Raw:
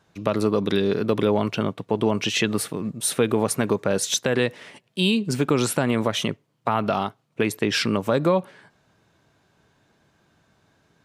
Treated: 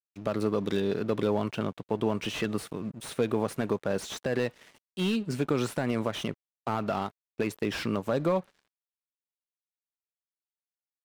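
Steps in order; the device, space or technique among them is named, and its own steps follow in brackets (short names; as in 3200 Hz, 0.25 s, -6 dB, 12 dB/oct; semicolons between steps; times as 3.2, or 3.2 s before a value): early transistor amplifier (crossover distortion -45.5 dBFS; slew limiter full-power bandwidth 130 Hz); gain -6 dB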